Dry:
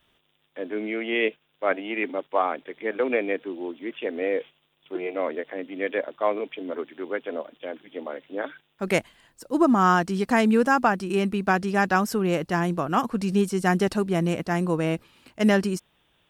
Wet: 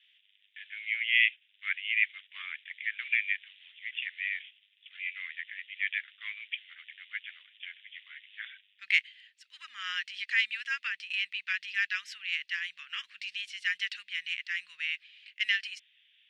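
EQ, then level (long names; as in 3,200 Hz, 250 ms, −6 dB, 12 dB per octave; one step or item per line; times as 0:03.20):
elliptic high-pass filter 1,900 Hz, stop band 60 dB
low-pass with resonance 3,000 Hz, resonance Q 2
0.0 dB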